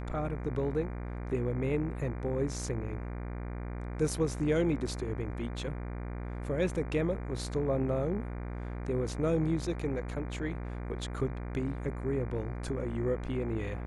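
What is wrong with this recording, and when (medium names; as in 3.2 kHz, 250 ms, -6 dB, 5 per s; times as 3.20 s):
buzz 60 Hz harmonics 40 -38 dBFS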